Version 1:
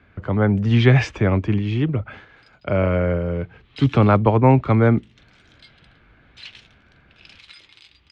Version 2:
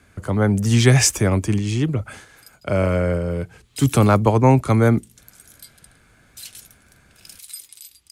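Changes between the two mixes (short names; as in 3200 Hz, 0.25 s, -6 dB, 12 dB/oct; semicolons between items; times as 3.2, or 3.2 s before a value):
background -8.0 dB; master: remove LPF 3300 Hz 24 dB/oct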